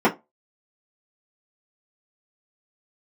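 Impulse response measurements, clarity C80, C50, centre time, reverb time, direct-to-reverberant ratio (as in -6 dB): 25.5 dB, 18.0 dB, 13 ms, not exponential, -7.0 dB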